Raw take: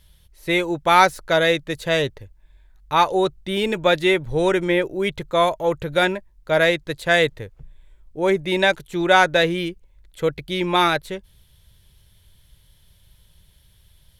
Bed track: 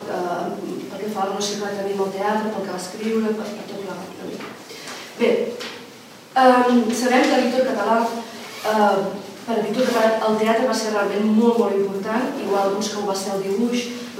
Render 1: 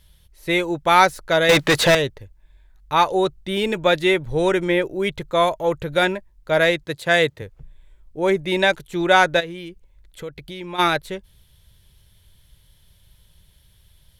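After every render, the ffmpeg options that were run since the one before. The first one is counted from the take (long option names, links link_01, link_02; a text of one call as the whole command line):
ffmpeg -i in.wav -filter_complex "[0:a]asettb=1/sr,asplit=3[link_01][link_02][link_03];[link_01]atrim=end=1.494[link_04];[link_02]atrim=start=1.49:end=1.95,asetpts=PTS-STARTPTS,afade=type=in:duration=0.004:curve=qsin,afade=type=out:start_time=0.456:duration=0.004:curve=qsin,asplit=2[link_05][link_06];[link_06]highpass=frequency=720:poles=1,volume=33dB,asoftclip=type=tanh:threshold=-6.5dB[link_07];[link_05][link_07]amix=inputs=2:normalize=0,lowpass=frequency=3900:poles=1,volume=-6dB[link_08];[link_03]atrim=start=1.946[link_09];[link_04][link_08]acrossfade=duration=0.004:curve1=hsin:curve2=qsin[link_10];[link_10][link_09]acrossfade=duration=0.004:curve1=qsin:curve2=hsin,asettb=1/sr,asplit=3[link_11][link_12][link_13];[link_11]atrim=end=6.854[link_14];[link_12]atrim=start=6.85:end=7.42,asetpts=PTS-STARTPTS,afade=type=in:duration=0.004:curve=qsin,afade=type=out:start_time=0.566:duration=0.004:curve=qsin,highpass=frequency=67:width=0.5412,highpass=frequency=67:width=1.3066[link_15];[link_13]atrim=start=7.416[link_16];[link_14][link_15]acrossfade=duration=0.004:curve1=hsin:curve2=qsin[link_17];[link_17][link_16]acrossfade=duration=0.004:curve1=qsin:curve2=hsin,asplit=3[link_18][link_19][link_20];[link_18]afade=type=out:start_time=9.39:duration=0.02[link_21];[link_19]acompressor=threshold=-34dB:ratio=2.5:attack=3.2:release=140:knee=1:detection=peak,afade=type=in:start_time=9.39:duration=0.02,afade=type=out:start_time=10.78:duration=0.02[link_22];[link_20]afade=type=in:start_time=10.78:duration=0.02[link_23];[link_21][link_22][link_23]amix=inputs=3:normalize=0" out.wav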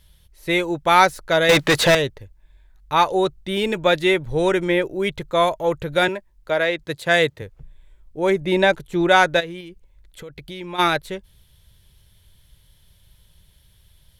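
ffmpeg -i in.wav -filter_complex "[0:a]asettb=1/sr,asplit=3[link_01][link_02][link_03];[link_01]atrim=end=6.084[link_04];[link_02]atrim=start=6.08:end=6.79,asetpts=PTS-STARTPTS,afade=type=in:duration=0.004:curve=qsin,afade=type=out:start_time=0.706:duration=0.004:curve=qsin,acrossover=split=220|4700[link_05][link_06][link_07];[link_05]acompressor=threshold=-46dB:ratio=4[link_08];[link_06]acompressor=threshold=-16dB:ratio=4[link_09];[link_07]acompressor=threshold=-51dB:ratio=4[link_10];[link_08][link_09][link_10]amix=inputs=3:normalize=0[link_11];[link_03]atrim=start=6.786[link_12];[link_04][link_11]acrossfade=duration=0.004:curve1=hsin:curve2=qsin[link_13];[link_13][link_12]acrossfade=duration=0.004:curve1=qsin:curve2=hsin,asettb=1/sr,asplit=3[link_14][link_15][link_16];[link_14]atrim=end=8.414[link_17];[link_15]atrim=start=8.41:end=9.09,asetpts=PTS-STARTPTS,afade=type=in:duration=0.004:curve=qsin,afade=type=out:start_time=0.676:duration=0.004:curve=qsin,tiltshelf=frequency=1400:gain=3.5[link_18];[link_16]atrim=start=9.086[link_19];[link_17][link_18]acrossfade=duration=0.004:curve1=hsin:curve2=qsin[link_20];[link_20][link_19]acrossfade=duration=0.004:curve1=qsin:curve2=hsin,asettb=1/sr,asplit=3[link_21][link_22][link_23];[link_21]atrim=end=9.604[link_24];[link_22]atrim=start=9.6:end=10.3,asetpts=PTS-STARTPTS,afade=type=in:duration=0.004:curve=qsin,afade=type=out:start_time=0.696:duration=0.004:curve=qsin,acompressor=threshold=-34dB:ratio=3:attack=3.2:release=140:knee=1:detection=peak[link_25];[link_23]atrim=start=10.296[link_26];[link_24][link_25]acrossfade=duration=0.004:curve1=hsin:curve2=qsin[link_27];[link_27][link_26]acrossfade=duration=0.004:curve1=qsin:curve2=hsin" out.wav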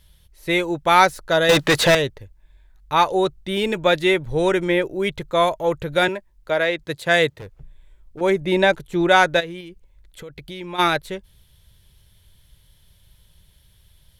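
ffmpeg -i in.wav -filter_complex "[0:a]asettb=1/sr,asplit=3[link_01][link_02][link_03];[link_01]atrim=end=1.214[link_04];[link_02]atrim=start=1.21:end=1.65,asetpts=PTS-STARTPTS,afade=type=in:duration=0.004:curve=qsin,afade=type=out:start_time=0.436:duration=0.004:curve=qsin,bandreject=frequency=2200:width=5.6[link_05];[link_03]atrim=start=1.646[link_06];[link_04][link_05]acrossfade=duration=0.004:curve1=hsin:curve2=qsin[link_07];[link_07][link_06]acrossfade=duration=0.004:curve1=qsin:curve2=hsin,asettb=1/sr,asplit=3[link_08][link_09][link_10];[link_08]atrim=end=7.364[link_11];[link_09]atrim=start=7.36:end=8.21,asetpts=PTS-STARTPTS,afade=type=in:duration=0.004:curve=qsin,afade=type=out:start_time=0.846:duration=0.004:curve=qsin,asoftclip=type=hard:threshold=-32dB[link_12];[link_10]atrim=start=8.206[link_13];[link_11][link_12]acrossfade=duration=0.004:curve1=hsin:curve2=qsin[link_14];[link_14][link_13]acrossfade=duration=0.004:curve1=qsin:curve2=hsin" out.wav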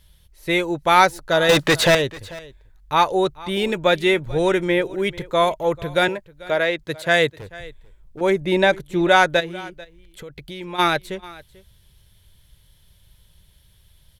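ffmpeg -i in.wav -af "aecho=1:1:441:0.0944" out.wav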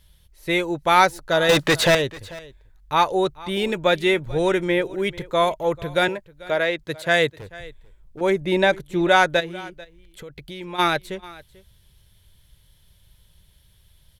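ffmpeg -i in.wav -af "volume=-1.5dB" out.wav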